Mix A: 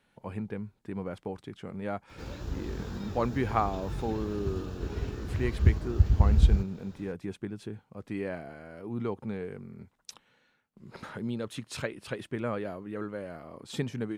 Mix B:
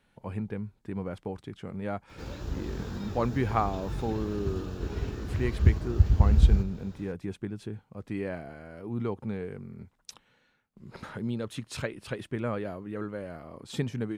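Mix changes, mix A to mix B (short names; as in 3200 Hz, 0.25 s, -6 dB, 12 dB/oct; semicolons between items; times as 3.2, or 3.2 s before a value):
speech: add low shelf 94 Hz +8.5 dB; reverb: on, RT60 0.80 s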